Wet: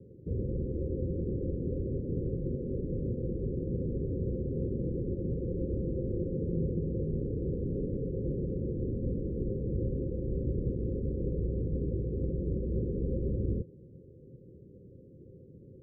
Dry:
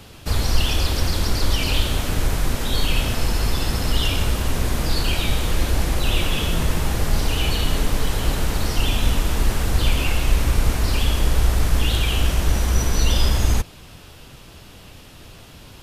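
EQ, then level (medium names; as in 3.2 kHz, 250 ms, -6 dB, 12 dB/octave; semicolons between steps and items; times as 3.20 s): band-pass filter 380 Hz, Q 0.52; rippled Chebyshev low-pass 540 Hz, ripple 6 dB; 0.0 dB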